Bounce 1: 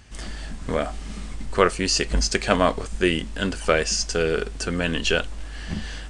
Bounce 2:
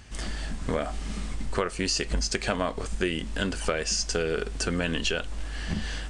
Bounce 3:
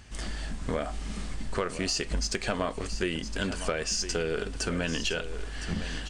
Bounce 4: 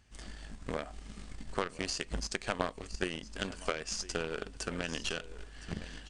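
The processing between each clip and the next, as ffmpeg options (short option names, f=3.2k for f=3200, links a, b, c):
-filter_complex "[0:a]asplit=2[a][b];[b]alimiter=limit=-10dB:level=0:latency=1:release=237,volume=2.5dB[c];[a][c]amix=inputs=2:normalize=0,acompressor=threshold=-17dB:ratio=5,volume=-6.5dB"
-af "asoftclip=type=tanh:threshold=-13dB,aecho=1:1:1012:0.266,volume=-2dB"
-af "aeval=exprs='0.158*(cos(1*acos(clip(val(0)/0.158,-1,1)))-cos(1*PI/2))+0.0447*(cos(3*acos(clip(val(0)/0.158,-1,1)))-cos(3*PI/2))':c=same,aresample=22050,aresample=44100,volume=2dB"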